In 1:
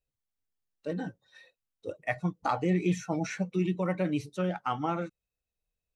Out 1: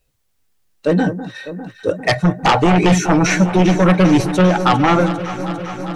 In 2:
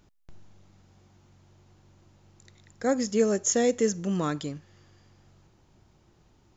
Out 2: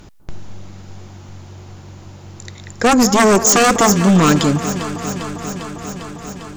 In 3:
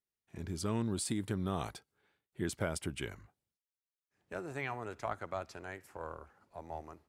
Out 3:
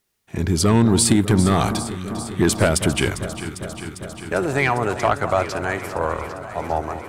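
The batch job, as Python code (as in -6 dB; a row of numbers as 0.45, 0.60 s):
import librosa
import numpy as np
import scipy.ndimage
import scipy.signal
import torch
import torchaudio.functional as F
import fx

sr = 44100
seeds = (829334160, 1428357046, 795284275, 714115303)

y = fx.fold_sine(x, sr, drive_db=12, ceiling_db=-12.5)
y = fx.echo_alternate(y, sr, ms=200, hz=1400.0, feedback_pct=87, wet_db=-11.5)
y = y * 10.0 ** (4.5 / 20.0)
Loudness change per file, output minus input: +16.5, +12.5, +19.0 LU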